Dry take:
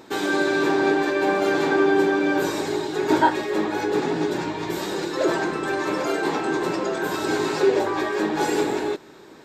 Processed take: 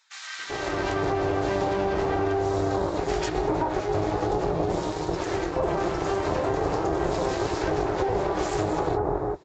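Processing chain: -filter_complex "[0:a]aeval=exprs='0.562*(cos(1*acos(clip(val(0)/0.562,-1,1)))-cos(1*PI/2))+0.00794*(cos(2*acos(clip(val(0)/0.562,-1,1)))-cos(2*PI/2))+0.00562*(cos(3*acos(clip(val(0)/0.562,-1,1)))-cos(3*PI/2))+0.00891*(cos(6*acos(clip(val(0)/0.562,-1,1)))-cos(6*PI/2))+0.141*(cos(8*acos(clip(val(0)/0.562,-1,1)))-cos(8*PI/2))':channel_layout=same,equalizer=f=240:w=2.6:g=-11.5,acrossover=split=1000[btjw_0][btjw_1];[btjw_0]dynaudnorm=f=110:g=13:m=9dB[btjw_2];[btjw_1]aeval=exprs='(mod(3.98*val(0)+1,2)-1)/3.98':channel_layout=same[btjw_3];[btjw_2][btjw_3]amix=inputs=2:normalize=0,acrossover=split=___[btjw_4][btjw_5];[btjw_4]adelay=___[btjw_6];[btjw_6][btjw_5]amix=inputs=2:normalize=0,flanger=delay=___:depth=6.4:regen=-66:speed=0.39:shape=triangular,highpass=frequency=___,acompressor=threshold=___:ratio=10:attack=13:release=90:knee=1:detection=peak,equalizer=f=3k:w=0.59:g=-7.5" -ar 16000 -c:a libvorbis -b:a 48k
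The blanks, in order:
1500, 390, 1.9, 41, -22dB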